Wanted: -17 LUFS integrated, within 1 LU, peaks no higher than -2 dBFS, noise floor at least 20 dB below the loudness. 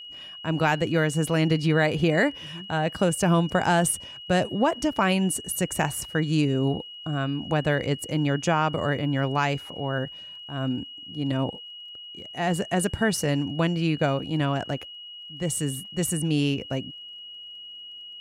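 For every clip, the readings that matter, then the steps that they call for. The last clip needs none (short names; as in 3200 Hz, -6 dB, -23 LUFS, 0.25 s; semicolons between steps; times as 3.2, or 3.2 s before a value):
ticks 24/s; steady tone 2900 Hz; tone level -39 dBFS; loudness -25.5 LUFS; peak -9.0 dBFS; loudness target -17.0 LUFS
-> de-click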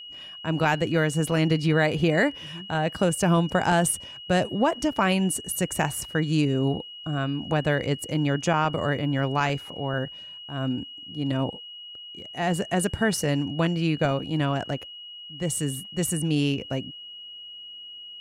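ticks 0/s; steady tone 2900 Hz; tone level -39 dBFS
-> notch 2900 Hz, Q 30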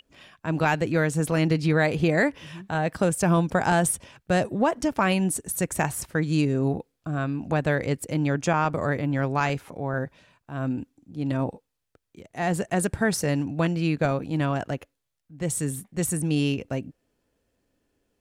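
steady tone none; loudness -25.5 LUFS; peak -9.5 dBFS; loudness target -17.0 LUFS
-> gain +8.5 dB; limiter -2 dBFS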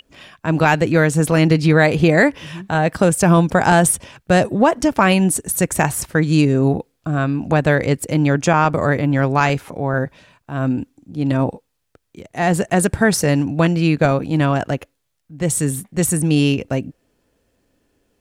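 loudness -17.0 LUFS; peak -2.0 dBFS; noise floor -71 dBFS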